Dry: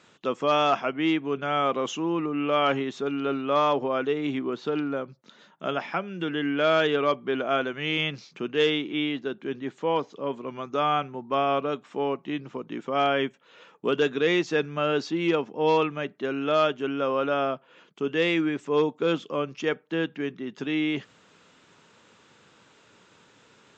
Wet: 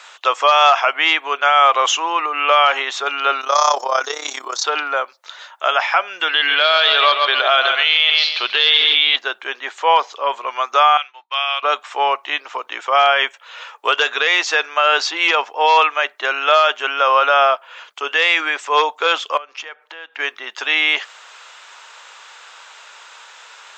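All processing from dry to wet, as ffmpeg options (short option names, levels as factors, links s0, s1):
-filter_complex "[0:a]asettb=1/sr,asplit=3[s0][s1][s2];[s0]atrim=end=3.414[s3];[s1]atrim=start=3.41:end=4.64,asetpts=PTS-STARTPTS,afade=t=in:d=0.004:c=qsin,afade=t=out:st=1.226:d=0.004:c=qsin,highshelf=f=4000:t=q:w=3:g=13,tremolo=f=33:d=0.75[s4];[s2]atrim=start=4.636[s5];[s3][s4]acrossfade=d=0.004:c1=hsin:c2=qsin[s6];[s6][s5]acrossfade=d=0.004:c1=qsin:c2=hsin,asettb=1/sr,asplit=3[s7][s8][s9];[s7]atrim=end=6.294[s10];[s8]atrim=start=6.29:end=9.16,asetpts=PTS-STARTPTS,afade=t=in:d=0.004:c=qsin,afade=t=out:st=2.866:d=0.004:c=qsin,lowpass=f=4100:t=q:w=7.2,aecho=1:1:136|272|408|544:0.316|0.101|0.0324|0.0104,atrim=end_sample=126567[s11];[s9]atrim=start=9.156[s12];[s10][s11]acrossfade=d=0.004:c1=hsin:c2=qsin[s13];[s13][s12]acrossfade=d=0.004:c1=qsin:c2=hsin,asettb=1/sr,asplit=3[s14][s15][s16];[s14]atrim=end=10.974[s17];[s15]atrim=start=10.97:end=11.63,asetpts=PTS-STARTPTS,afade=t=in:d=0.004:c=qsin,afade=t=out:st=0.656:d=0.004:c=qsin,bandpass=f=3200:t=q:w=1.9,agate=range=0.0224:threshold=0.00112:ratio=3:release=100:detection=peak[s18];[s16]atrim=start=11.626[s19];[s17][s18]acrossfade=d=0.004:c1=hsin:c2=qsin[s20];[s20][s19]acrossfade=d=0.004:c1=qsin:c2=hsin,asettb=1/sr,asplit=3[s21][s22][s23];[s21]atrim=end=19.374[s24];[s22]atrim=start=19.37:end=20.19,asetpts=PTS-STARTPTS,afade=t=in:d=0.004:c=qsin,afade=t=out:st=0.816:d=0.004:c=qsin,highshelf=f=5700:g=-10,acompressor=threshold=0.00708:ratio=5:attack=3.2:release=140:knee=1:detection=peak,asoftclip=type=hard:threshold=0.0224[s25];[s23]atrim=start=20.186[s26];[s24][s25]acrossfade=d=0.004:c1=hsin:c2=qsin[s27];[s27][s26]acrossfade=d=0.004:c1=qsin:c2=hsin,highpass=f=730:w=0.5412,highpass=f=730:w=1.3066,alimiter=level_in=10.6:limit=0.891:release=50:level=0:latency=1,volume=0.75"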